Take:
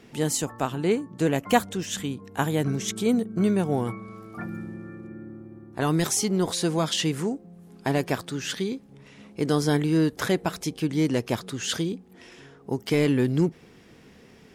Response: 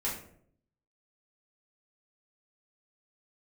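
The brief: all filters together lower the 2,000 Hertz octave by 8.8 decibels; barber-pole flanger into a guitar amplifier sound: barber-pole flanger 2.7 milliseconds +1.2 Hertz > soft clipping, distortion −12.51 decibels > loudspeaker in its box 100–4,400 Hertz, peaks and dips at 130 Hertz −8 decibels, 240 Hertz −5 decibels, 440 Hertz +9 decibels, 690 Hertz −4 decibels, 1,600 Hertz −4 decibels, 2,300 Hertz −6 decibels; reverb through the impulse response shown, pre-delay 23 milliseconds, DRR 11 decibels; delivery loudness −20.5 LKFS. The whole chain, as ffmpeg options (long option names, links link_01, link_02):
-filter_complex "[0:a]equalizer=frequency=2000:width_type=o:gain=-6.5,asplit=2[link_01][link_02];[1:a]atrim=start_sample=2205,adelay=23[link_03];[link_02][link_03]afir=irnorm=-1:irlink=0,volume=-16dB[link_04];[link_01][link_04]amix=inputs=2:normalize=0,asplit=2[link_05][link_06];[link_06]adelay=2.7,afreqshift=1.2[link_07];[link_05][link_07]amix=inputs=2:normalize=1,asoftclip=threshold=-22.5dB,highpass=100,equalizer=frequency=130:width_type=q:width=4:gain=-8,equalizer=frequency=240:width_type=q:width=4:gain=-5,equalizer=frequency=440:width_type=q:width=4:gain=9,equalizer=frequency=690:width_type=q:width=4:gain=-4,equalizer=frequency=1600:width_type=q:width=4:gain=-4,equalizer=frequency=2300:width_type=q:width=4:gain=-6,lowpass=frequency=4400:width=0.5412,lowpass=frequency=4400:width=1.3066,volume=11dB"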